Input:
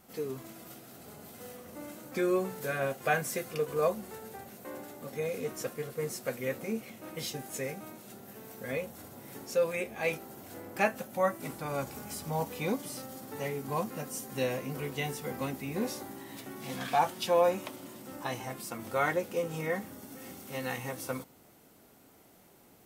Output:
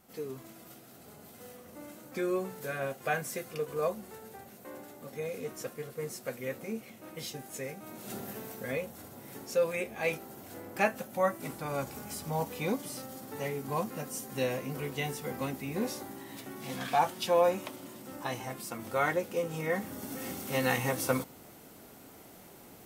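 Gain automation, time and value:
7.8 s -3 dB
8.16 s +9.5 dB
8.76 s 0 dB
19.64 s 0 dB
20.07 s +7 dB

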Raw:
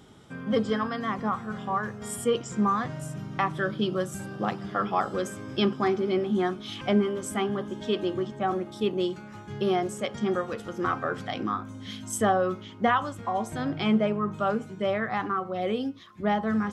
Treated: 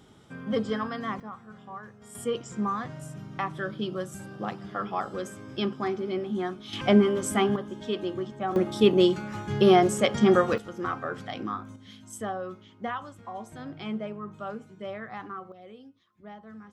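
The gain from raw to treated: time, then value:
-2.5 dB
from 1.2 s -13 dB
from 2.15 s -4.5 dB
from 6.73 s +4 dB
from 7.56 s -3 dB
from 8.56 s +7.5 dB
from 10.58 s -3.5 dB
from 11.76 s -10 dB
from 15.52 s -19.5 dB

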